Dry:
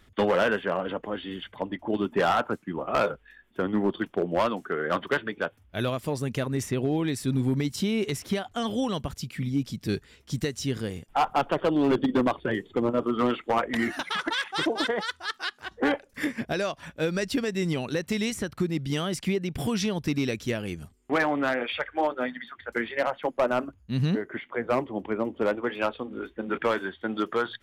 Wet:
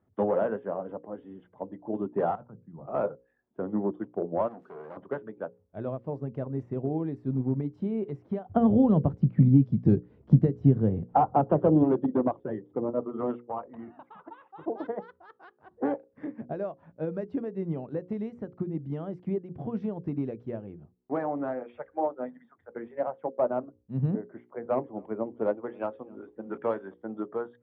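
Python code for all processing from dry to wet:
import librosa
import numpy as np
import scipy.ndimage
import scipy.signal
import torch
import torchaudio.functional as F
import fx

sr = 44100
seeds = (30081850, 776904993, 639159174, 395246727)

y = fx.chain(x, sr, fx.low_shelf_res(hz=220.0, db=11.5, q=1.5),
    fx.hum_notches(base_hz=50, count=3),
    fx.level_steps(step_db=18), at=(2.35, 2.86))
y = fx.chain(y, sr, fx.crossing_spikes(level_db=-27.5),
    fx.transformer_sat(knee_hz=1900.0), at=(4.48, 4.97))
y = fx.chain(y, sr, fx.low_shelf(hz=320.0, db=11.5),
    fx.band_squash(depth_pct=100), at=(8.49, 11.83))
y = fx.chain(y, sr, fx.cheby_ripple(hz=3900.0, ripple_db=9),
    fx.low_shelf(hz=120.0, db=8.5), at=(13.4, 14.68))
y = fx.chain(y, sr, fx.high_shelf(hz=2300.0, db=10.0),
    fx.echo_single(ms=267, db=-22.5), at=(24.57, 26.94))
y = scipy.signal.sosfilt(scipy.signal.cheby1(2, 1.0, [110.0, 750.0], 'bandpass', fs=sr, output='sos'), y)
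y = fx.hum_notches(y, sr, base_hz=60, count=9)
y = fx.upward_expand(y, sr, threshold_db=-36.0, expansion=1.5)
y = F.gain(torch.from_numpy(y), 3.0).numpy()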